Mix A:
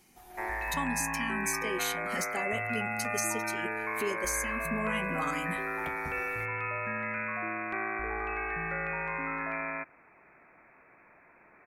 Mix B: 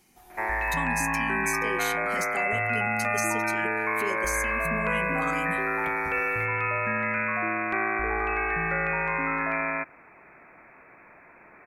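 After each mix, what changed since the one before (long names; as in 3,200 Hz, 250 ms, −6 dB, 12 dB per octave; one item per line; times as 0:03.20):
background +7.0 dB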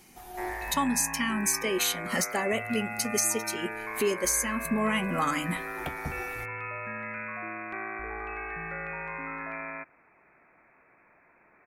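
speech +7.0 dB
background −9.5 dB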